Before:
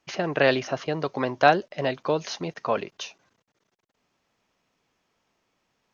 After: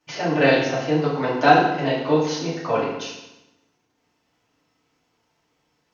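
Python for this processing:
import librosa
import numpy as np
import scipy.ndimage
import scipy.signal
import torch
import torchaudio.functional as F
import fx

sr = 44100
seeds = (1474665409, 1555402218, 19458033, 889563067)

y = fx.rev_fdn(x, sr, rt60_s=0.92, lf_ratio=1.25, hf_ratio=0.9, size_ms=20.0, drr_db=-8.5)
y = y * 10.0 ** (-5.0 / 20.0)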